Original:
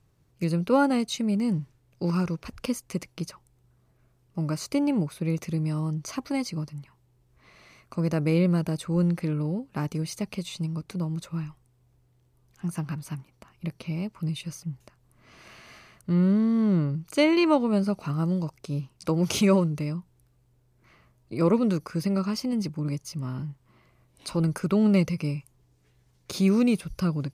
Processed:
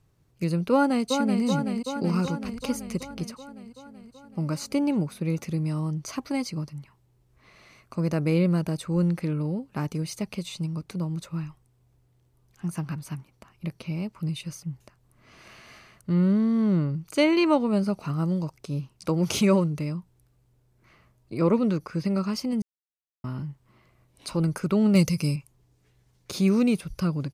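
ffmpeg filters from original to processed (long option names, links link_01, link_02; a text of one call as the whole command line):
ffmpeg -i in.wav -filter_complex "[0:a]asplit=2[link_01][link_02];[link_02]afade=type=in:start_time=0.72:duration=0.01,afade=type=out:start_time=1.44:duration=0.01,aecho=0:1:380|760|1140|1520|1900|2280|2660|3040|3420|3800|4180|4560:0.530884|0.371619|0.260133|0.182093|0.127465|0.0892257|0.062458|0.0437206|0.0306044|0.0214231|0.0149962|0.0104973[link_03];[link_01][link_03]amix=inputs=2:normalize=0,asettb=1/sr,asplit=3[link_04][link_05][link_06];[link_04]atrim=end=2.574[link_07];[link_05]atrim=start=2.57:end=3.24,asetpts=PTS-STARTPTS,afade=type=in:duration=0.004:curve=qsin,afade=type=out:start_time=0.666:duration=0.004:curve=qsin,aeval=exprs='val(0)+0.00355*(sin(2*PI*50*n/s)+sin(2*PI*2*50*n/s)/2+sin(2*PI*3*50*n/s)/3+sin(2*PI*4*50*n/s)/4+sin(2*PI*5*50*n/s)/5)':channel_layout=same[link_08];[link_06]atrim=start=3.236[link_09];[link_07][link_08]acrossfade=duration=0.004:curve1=hsin:curve2=qsin[link_10];[link_10][link_09]acrossfade=duration=0.004:curve1=qsin:curve2=hsin,asettb=1/sr,asplit=3[link_11][link_12][link_13];[link_11]atrim=end=21.394[link_14];[link_12]atrim=start=21.39:end=22.05,asetpts=PTS-STARTPTS,afade=type=in:duration=0.004:curve=qsin,afade=type=out:start_time=0.656:duration=0.004:curve=qsin,acrossover=split=5100[link_15][link_16];[link_16]acompressor=threshold=-60dB:ratio=4:attack=1:release=60[link_17];[link_15][link_17]amix=inputs=2:normalize=0[link_18];[link_13]atrim=start=22.046[link_19];[link_14][link_18]acrossfade=duration=0.004:curve1=hsin:curve2=qsin[link_20];[link_20][link_19]acrossfade=duration=0.004:curve1=qsin:curve2=hsin,asettb=1/sr,asplit=3[link_21][link_22][link_23];[link_21]atrim=end=24.954[link_24];[link_22]atrim=start=24.95:end=25.36,asetpts=PTS-STARTPTS,afade=type=in:duration=0.004:curve=qsin,afade=type=out:start_time=0.406:duration=0.004:curve=qsin,bass=frequency=250:gain=4,treble=frequency=4000:gain=14[link_25];[link_23]atrim=start=25.356[link_26];[link_24][link_25]acrossfade=duration=0.004:curve1=hsin:curve2=qsin[link_27];[link_27][link_26]acrossfade=duration=0.004:curve1=qsin:curve2=hsin,asplit=3[link_28][link_29][link_30];[link_28]atrim=end=22.62,asetpts=PTS-STARTPTS,afade=type=out:start_time=22.616:duration=0.004:curve=hsin[link_31];[link_29]atrim=start=22.62:end=23.24,asetpts=PTS-STARTPTS,volume=0[link_32];[link_30]atrim=start=23.24,asetpts=PTS-STARTPTS,afade=type=in:duration=0.004:curve=hsin[link_33];[link_31][link_32][link_33]concat=n=3:v=0:a=1" out.wav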